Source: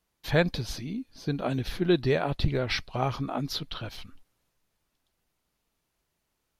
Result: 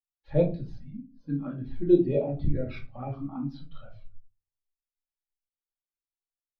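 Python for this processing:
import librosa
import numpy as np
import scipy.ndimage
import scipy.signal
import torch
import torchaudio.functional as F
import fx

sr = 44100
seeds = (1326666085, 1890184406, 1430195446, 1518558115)

y = fx.lowpass(x, sr, hz=1600.0, slope=6)
y = fx.low_shelf(y, sr, hz=220.0, db=-6.5)
y = fx.env_flanger(y, sr, rest_ms=2.4, full_db=-23.5)
y = fx.room_shoebox(y, sr, seeds[0], volume_m3=380.0, walls='furnished', distance_m=2.3)
y = fx.spectral_expand(y, sr, expansion=1.5)
y = F.gain(torch.from_numpy(y), 2.0).numpy()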